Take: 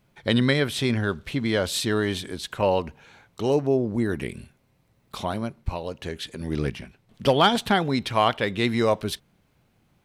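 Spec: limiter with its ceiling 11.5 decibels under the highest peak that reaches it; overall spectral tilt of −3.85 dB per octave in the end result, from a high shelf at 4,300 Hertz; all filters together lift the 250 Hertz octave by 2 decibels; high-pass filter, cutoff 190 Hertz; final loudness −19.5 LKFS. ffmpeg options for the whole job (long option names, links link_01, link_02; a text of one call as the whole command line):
ffmpeg -i in.wav -af "highpass=190,equalizer=frequency=250:width_type=o:gain=4,highshelf=frequency=4300:gain=7.5,volume=8dB,alimiter=limit=-7.5dB:level=0:latency=1" out.wav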